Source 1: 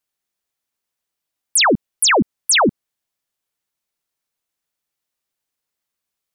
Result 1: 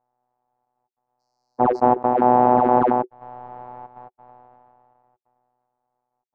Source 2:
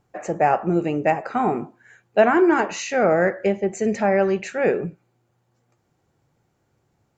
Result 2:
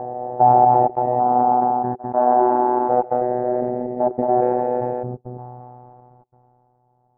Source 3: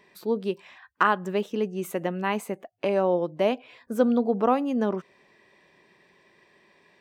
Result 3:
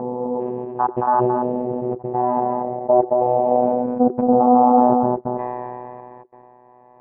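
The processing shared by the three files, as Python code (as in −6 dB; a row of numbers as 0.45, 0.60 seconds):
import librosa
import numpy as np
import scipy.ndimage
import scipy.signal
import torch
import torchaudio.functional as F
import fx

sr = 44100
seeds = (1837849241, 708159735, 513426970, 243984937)

p1 = fx.spec_steps(x, sr, hold_ms=400)
p2 = fx.rider(p1, sr, range_db=3, speed_s=2.0)
p3 = p1 + (p2 * librosa.db_to_amplitude(-2.0))
p4 = fx.wow_flutter(p3, sr, seeds[0], rate_hz=2.1, depth_cents=28.0)
p5 = fx.step_gate(p4, sr, bpm=140, pattern='xxxxxx.x..', floor_db=-60.0, edge_ms=4.5)
p6 = fx.notch(p5, sr, hz=410.0, q=12.0)
p7 = p6 + 10.0 ** (-9.5 / 20.0) * np.pad(p6, (int(225 * sr / 1000.0), 0))[:len(p6)]
p8 = fx.robotise(p7, sr, hz=124.0)
p9 = fx.ladder_lowpass(p8, sr, hz=870.0, resonance_pct=75)
p10 = fx.sustainer(p9, sr, db_per_s=21.0)
y = librosa.util.normalize(p10) * 10.0 ** (-3 / 20.0)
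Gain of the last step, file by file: +20.5, +9.5, +17.0 decibels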